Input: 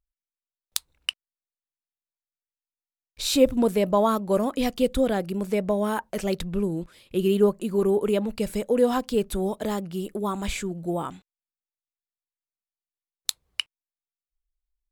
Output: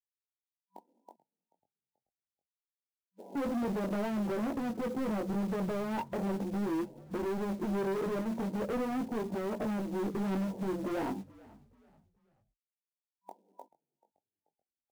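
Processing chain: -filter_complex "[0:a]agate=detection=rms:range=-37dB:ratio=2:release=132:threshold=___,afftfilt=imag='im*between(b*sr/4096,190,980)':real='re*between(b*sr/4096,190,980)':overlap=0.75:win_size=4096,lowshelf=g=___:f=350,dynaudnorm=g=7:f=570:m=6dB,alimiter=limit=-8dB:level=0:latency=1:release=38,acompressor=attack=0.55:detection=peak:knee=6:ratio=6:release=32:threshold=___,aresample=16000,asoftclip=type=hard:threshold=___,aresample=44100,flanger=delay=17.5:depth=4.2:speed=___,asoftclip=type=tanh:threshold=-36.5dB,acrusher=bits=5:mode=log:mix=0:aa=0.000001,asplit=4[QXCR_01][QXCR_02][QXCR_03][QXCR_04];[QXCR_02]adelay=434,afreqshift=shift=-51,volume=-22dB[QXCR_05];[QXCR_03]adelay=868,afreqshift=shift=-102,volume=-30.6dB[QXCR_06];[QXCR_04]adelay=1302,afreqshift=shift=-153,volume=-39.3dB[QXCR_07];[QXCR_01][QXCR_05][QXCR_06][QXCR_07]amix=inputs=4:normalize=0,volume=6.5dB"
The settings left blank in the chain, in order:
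-50dB, 10.5, -25dB, -29.5dB, 0.42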